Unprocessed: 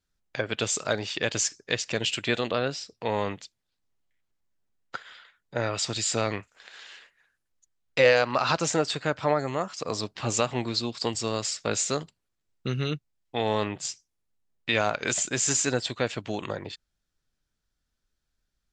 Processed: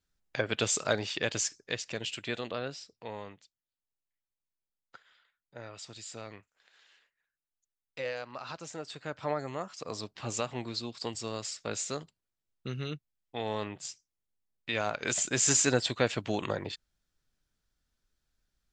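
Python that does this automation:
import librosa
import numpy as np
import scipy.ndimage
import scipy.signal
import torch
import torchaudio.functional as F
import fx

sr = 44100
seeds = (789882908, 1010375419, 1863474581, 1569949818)

y = fx.gain(x, sr, db=fx.line((0.9, -1.5), (2.05, -9.0), (2.83, -9.0), (3.36, -17.0), (8.73, -17.0), (9.3, -8.0), (14.69, -8.0), (15.49, 0.0)))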